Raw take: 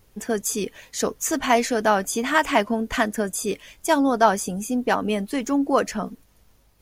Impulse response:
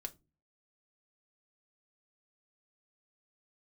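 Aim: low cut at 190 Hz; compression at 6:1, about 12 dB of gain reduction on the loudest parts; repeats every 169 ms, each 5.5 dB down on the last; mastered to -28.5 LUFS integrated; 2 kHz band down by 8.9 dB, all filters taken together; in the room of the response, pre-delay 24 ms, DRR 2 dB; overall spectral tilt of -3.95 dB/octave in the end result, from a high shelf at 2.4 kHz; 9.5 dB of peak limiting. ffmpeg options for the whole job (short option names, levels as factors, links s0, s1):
-filter_complex "[0:a]highpass=190,equalizer=f=2000:t=o:g=-8.5,highshelf=f=2400:g=-7.5,acompressor=threshold=0.0398:ratio=6,alimiter=level_in=1.41:limit=0.0631:level=0:latency=1,volume=0.708,aecho=1:1:169|338|507|676|845|1014|1183:0.531|0.281|0.149|0.079|0.0419|0.0222|0.0118,asplit=2[s0][s1];[1:a]atrim=start_sample=2205,adelay=24[s2];[s1][s2]afir=irnorm=-1:irlink=0,volume=1.12[s3];[s0][s3]amix=inputs=2:normalize=0,volume=1.68"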